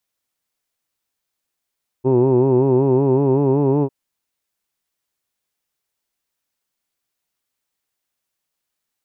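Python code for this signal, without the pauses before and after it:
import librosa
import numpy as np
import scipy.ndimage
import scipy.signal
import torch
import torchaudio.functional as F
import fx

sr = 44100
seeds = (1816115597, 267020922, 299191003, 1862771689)

y = fx.formant_vowel(sr, seeds[0], length_s=1.85, hz=126.0, glide_st=2.0, vibrato_hz=5.3, vibrato_st=0.9, f1_hz=370.0, f2_hz=920.0, f3_hz=2600.0)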